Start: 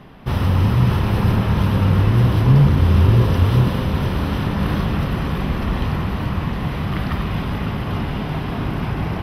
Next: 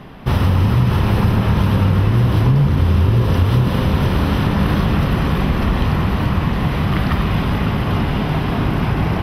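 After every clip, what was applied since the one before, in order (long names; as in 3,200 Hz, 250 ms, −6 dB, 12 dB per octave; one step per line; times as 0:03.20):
downward compressor, threshold −16 dBFS, peak gain reduction 8.5 dB
level +5.5 dB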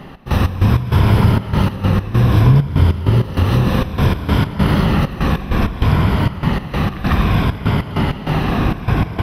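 rippled gain that drifts along the octave scale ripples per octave 1.7, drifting −0.61 Hz, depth 6 dB
gate pattern "x.x.x.xx" 98 BPM −12 dB
level +2 dB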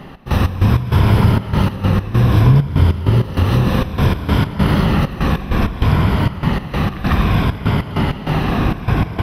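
no processing that can be heard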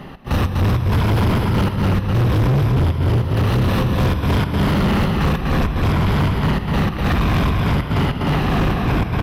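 on a send: repeating echo 247 ms, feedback 23%, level −4 dB
on the sum: gain into a clipping stage and back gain 13.5 dB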